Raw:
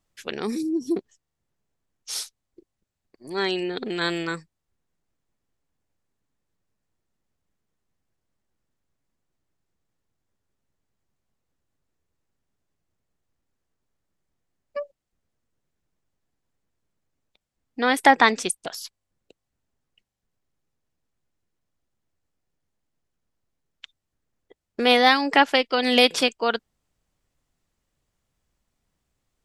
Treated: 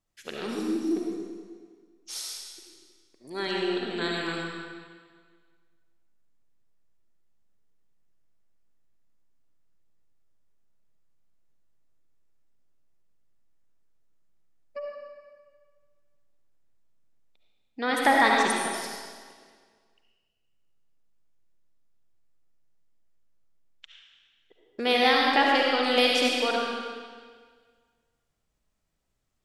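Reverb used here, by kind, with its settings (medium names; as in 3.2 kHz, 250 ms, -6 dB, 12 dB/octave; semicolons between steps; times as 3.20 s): algorithmic reverb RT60 1.7 s, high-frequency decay 0.95×, pre-delay 30 ms, DRR -2.5 dB; trim -7 dB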